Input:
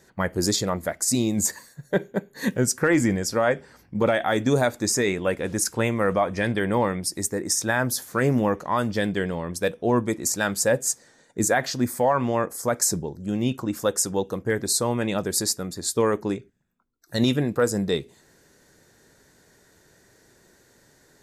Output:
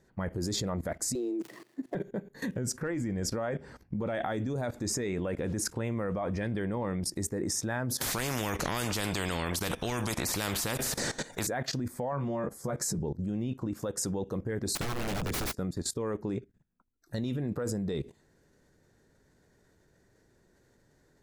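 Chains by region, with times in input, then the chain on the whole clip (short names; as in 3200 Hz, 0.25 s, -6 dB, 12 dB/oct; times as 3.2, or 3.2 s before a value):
1.15–1.95 switching dead time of 0.087 ms + frequency shift +120 Hz + bell 340 Hz +13 dB 0.43 oct
8.01–11.47 high shelf 2200 Hz +8 dB + spectral compressor 4:1
12.12–12.99 bell 170 Hz +9.5 dB 0.44 oct + notch 2600 Hz, Q 14 + doubler 14 ms -3 dB
14.75–15.59 block floating point 7-bit + HPF 48 Hz 24 dB/oct + wrapped overs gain 24 dB
whole clip: tilt -2 dB/oct; limiter -17.5 dBFS; level quantiser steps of 17 dB; gain +2 dB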